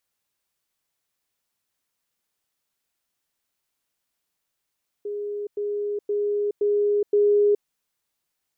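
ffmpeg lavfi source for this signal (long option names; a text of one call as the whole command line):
ffmpeg -f lavfi -i "aevalsrc='pow(10,(-27+3*floor(t/0.52))/20)*sin(2*PI*412*t)*clip(min(mod(t,0.52),0.42-mod(t,0.52))/0.005,0,1)':duration=2.6:sample_rate=44100" out.wav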